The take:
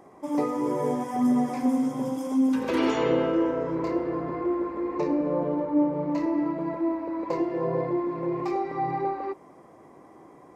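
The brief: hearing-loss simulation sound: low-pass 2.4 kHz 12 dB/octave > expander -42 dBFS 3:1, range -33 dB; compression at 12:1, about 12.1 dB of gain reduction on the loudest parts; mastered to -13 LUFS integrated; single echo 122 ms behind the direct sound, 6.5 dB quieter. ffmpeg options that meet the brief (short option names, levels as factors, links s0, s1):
-af "acompressor=threshold=0.0282:ratio=12,lowpass=2400,aecho=1:1:122:0.473,agate=range=0.0224:threshold=0.00794:ratio=3,volume=11.2"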